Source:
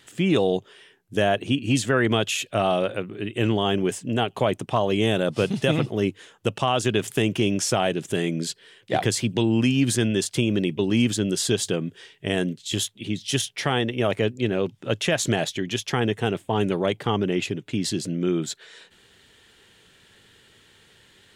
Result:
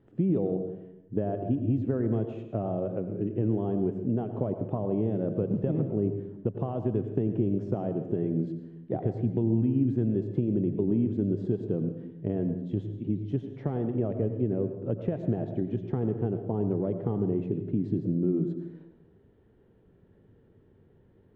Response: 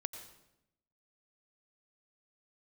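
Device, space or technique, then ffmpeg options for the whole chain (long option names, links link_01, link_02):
television next door: -filter_complex "[0:a]acompressor=threshold=-25dB:ratio=3,lowpass=430[link_01];[1:a]atrim=start_sample=2205[link_02];[link_01][link_02]afir=irnorm=-1:irlink=0,volume=3.5dB"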